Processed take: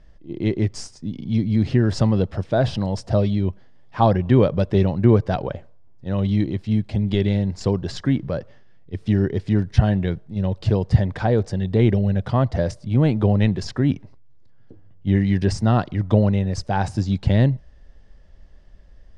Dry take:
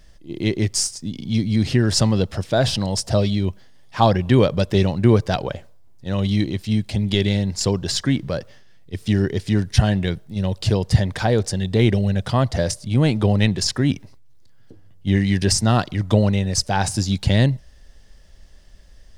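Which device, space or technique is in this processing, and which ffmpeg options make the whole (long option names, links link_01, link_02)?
through cloth: -af "lowpass=7600,highshelf=frequency=2800:gain=-16"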